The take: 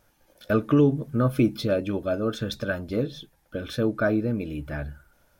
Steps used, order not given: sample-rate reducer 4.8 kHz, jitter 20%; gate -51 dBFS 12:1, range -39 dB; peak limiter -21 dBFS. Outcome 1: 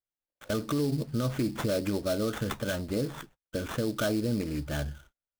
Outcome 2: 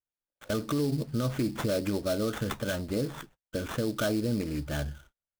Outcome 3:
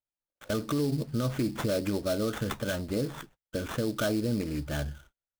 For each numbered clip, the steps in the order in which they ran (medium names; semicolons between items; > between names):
sample-rate reducer > peak limiter > gate; gate > sample-rate reducer > peak limiter; sample-rate reducer > gate > peak limiter